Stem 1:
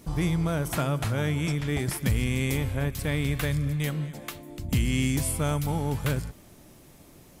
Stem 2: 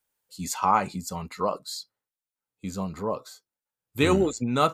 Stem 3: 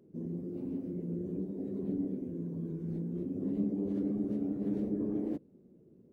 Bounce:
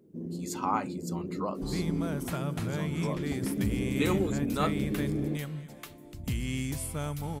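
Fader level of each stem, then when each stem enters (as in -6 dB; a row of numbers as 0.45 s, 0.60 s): -7.5 dB, -8.0 dB, +1.0 dB; 1.55 s, 0.00 s, 0.00 s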